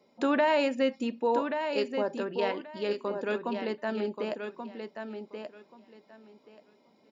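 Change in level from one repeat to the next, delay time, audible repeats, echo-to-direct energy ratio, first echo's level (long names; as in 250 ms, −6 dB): −14.5 dB, 1,131 ms, 2, −7.0 dB, −7.0 dB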